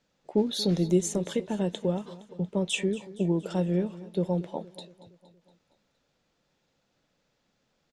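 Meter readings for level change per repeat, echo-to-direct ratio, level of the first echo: -5.0 dB, -16.5 dB, -18.0 dB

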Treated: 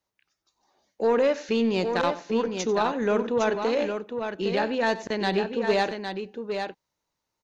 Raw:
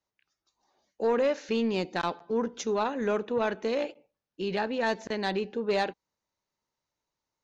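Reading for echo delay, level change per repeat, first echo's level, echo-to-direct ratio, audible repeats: 92 ms, no regular repeats, -17.0 dB, -6.0 dB, 2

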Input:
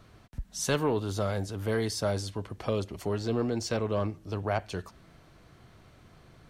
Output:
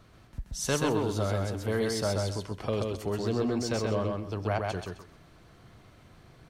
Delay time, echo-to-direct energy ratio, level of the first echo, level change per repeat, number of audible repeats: 130 ms, -3.0 dB, -3.0 dB, -13.0 dB, 3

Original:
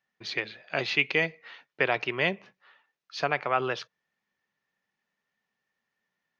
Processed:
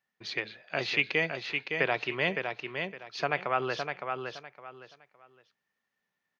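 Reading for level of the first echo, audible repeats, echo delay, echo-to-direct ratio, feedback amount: -5.5 dB, 3, 562 ms, -5.0 dB, 25%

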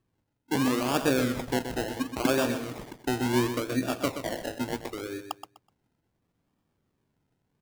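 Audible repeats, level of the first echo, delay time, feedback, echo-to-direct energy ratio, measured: 3, -9.0 dB, 125 ms, 23%, -9.0 dB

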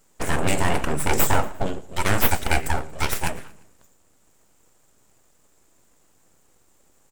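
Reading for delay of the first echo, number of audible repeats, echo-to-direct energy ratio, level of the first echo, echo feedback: 117 ms, 2, -21.0 dB, -22.0 dB, 45%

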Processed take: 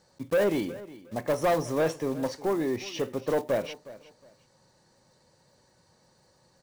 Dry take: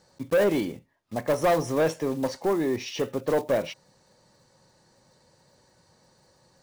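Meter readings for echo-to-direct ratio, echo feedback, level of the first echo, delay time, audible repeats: -18.0 dB, 24%, -18.0 dB, 363 ms, 2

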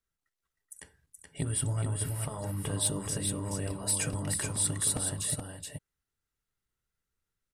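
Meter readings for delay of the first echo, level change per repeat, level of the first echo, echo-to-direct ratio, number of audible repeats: 425 ms, no regular repeats, -4.5 dB, -4.5 dB, 1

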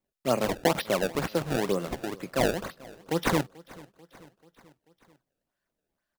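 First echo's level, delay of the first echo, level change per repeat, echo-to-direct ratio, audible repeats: -22.0 dB, 438 ms, -4.5 dB, -20.5 dB, 3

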